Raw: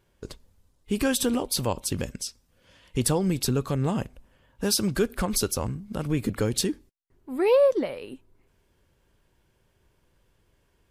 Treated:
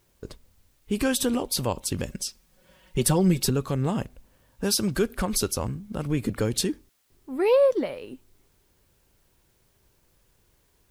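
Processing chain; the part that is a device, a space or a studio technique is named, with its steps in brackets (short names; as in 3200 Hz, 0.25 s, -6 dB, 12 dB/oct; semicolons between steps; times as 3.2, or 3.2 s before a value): plain cassette with noise reduction switched in (mismatched tape noise reduction decoder only; wow and flutter 28 cents; white noise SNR 41 dB); 2.09–3.5 comb 5.4 ms, depth 80%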